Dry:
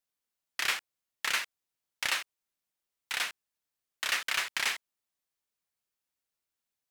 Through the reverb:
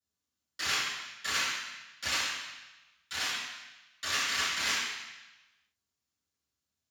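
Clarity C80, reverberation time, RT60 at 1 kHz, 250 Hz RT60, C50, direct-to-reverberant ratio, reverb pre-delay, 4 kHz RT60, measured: 2.0 dB, 1.0 s, 1.1 s, 1.0 s, -0.5 dB, -15.5 dB, 3 ms, 1.1 s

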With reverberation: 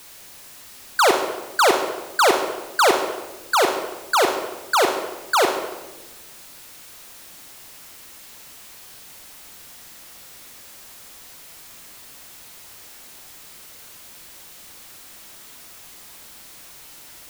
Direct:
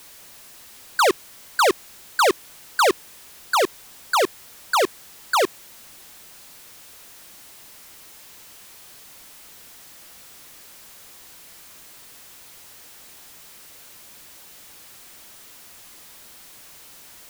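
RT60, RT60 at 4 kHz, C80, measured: 1.1 s, 0.80 s, 8.0 dB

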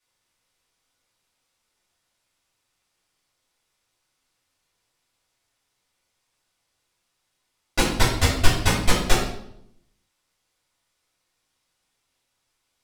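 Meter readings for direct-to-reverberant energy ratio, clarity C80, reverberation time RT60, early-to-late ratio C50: -9.0 dB, 7.0 dB, 0.75 s, 4.0 dB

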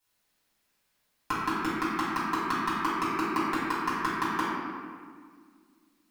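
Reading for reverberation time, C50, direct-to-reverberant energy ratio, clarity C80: 1.8 s, -3.0 dB, -11.0 dB, -0.5 dB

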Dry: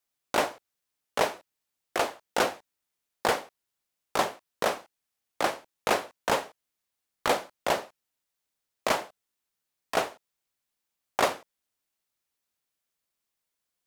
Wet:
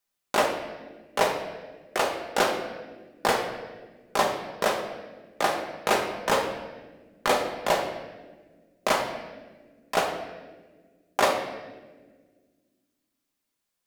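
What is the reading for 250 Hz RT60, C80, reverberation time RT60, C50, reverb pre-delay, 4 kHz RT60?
2.5 s, 8.0 dB, 1.4 s, 6.0 dB, 4 ms, 1.0 s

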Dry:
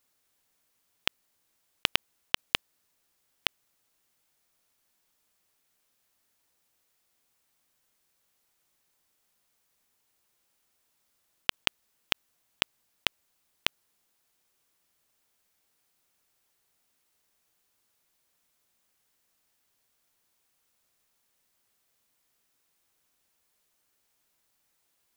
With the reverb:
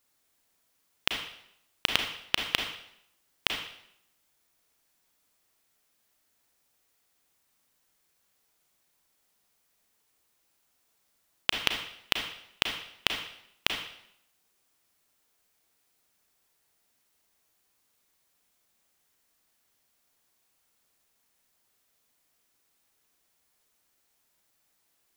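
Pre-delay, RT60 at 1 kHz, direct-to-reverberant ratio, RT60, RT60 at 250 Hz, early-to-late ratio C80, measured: 32 ms, 0.70 s, 3.0 dB, 0.75 s, 0.75 s, 8.0 dB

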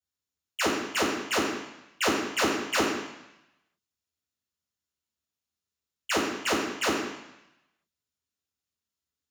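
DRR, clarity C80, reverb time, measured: -11.0 dB, 4.5 dB, 0.85 s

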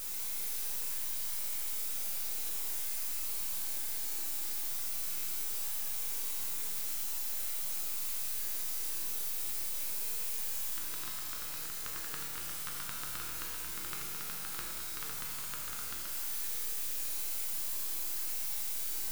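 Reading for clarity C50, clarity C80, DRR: 1.5 dB, 2.5 dB, -2.0 dB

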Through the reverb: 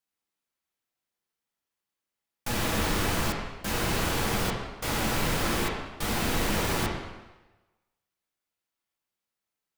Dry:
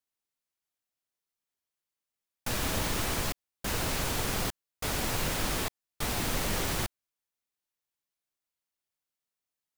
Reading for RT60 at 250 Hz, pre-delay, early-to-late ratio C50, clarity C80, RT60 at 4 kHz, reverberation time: 1.1 s, 5 ms, 2.0 dB, 4.5 dB, 1.0 s, 1.1 s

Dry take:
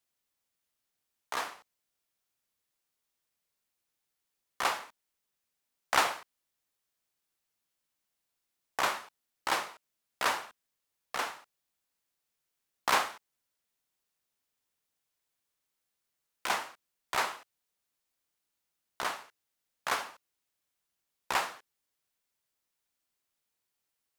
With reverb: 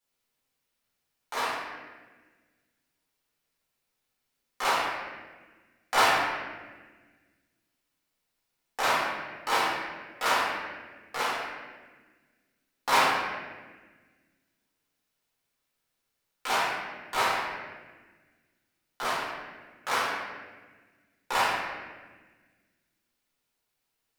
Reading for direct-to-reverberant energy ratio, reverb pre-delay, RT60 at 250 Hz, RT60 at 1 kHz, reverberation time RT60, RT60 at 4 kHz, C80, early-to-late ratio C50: -9.5 dB, 4 ms, 2.1 s, 1.2 s, 1.4 s, 1.0 s, 1.5 dB, -1.0 dB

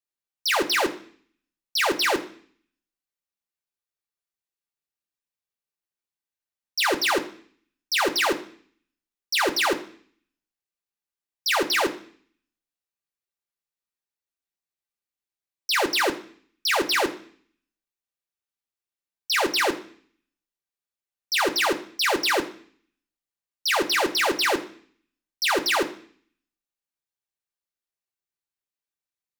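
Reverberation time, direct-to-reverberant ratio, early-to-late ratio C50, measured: 0.50 s, 2.0 dB, 14.0 dB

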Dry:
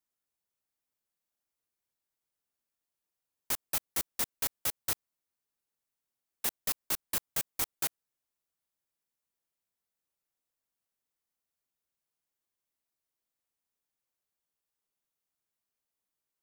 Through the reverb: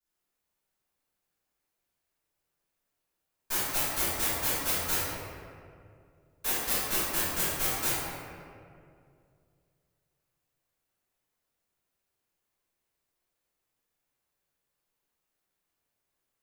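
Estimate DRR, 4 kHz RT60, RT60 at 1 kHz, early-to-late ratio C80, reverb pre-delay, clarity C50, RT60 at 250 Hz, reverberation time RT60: -15.5 dB, 1.2 s, 2.1 s, -1.5 dB, 4 ms, -4.5 dB, 2.6 s, 2.3 s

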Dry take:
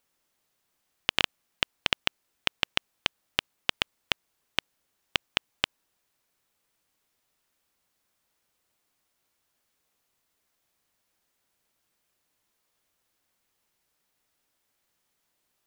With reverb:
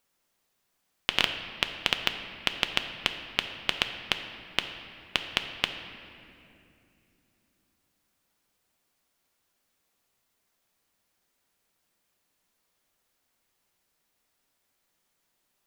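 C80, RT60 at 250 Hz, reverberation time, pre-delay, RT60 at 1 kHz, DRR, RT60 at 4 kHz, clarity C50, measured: 9.0 dB, 4.1 s, 2.7 s, 4 ms, 2.3 s, 6.0 dB, 1.9 s, 8.0 dB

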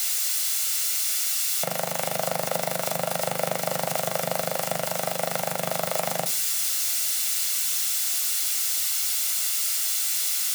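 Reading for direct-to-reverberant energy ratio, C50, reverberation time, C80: 7.0 dB, 16.0 dB, 0.40 s, 21.5 dB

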